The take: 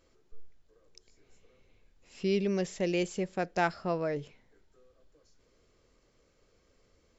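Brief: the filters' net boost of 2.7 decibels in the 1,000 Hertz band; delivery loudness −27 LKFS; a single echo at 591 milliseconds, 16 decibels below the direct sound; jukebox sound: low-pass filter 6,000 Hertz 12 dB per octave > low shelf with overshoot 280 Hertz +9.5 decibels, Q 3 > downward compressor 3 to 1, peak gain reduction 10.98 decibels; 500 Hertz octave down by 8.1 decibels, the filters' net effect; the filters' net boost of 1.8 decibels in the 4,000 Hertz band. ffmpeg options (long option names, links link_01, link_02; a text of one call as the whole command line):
ffmpeg -i in.wav -af "lowpass=6000,lowshelf=frequency=280:width_type=q:width=3:gain=9.5,equalizer=frequency=500:width_type=o:gain=-8.5,equalizer=frequency=1000:width_type=o:gain=9,equalizer=frequency=4000:width_type=o:gain=3,aecho=1:1:591:0.158,acompressor=threshold=-29dB:ratio=3,volume=5dB" out.wav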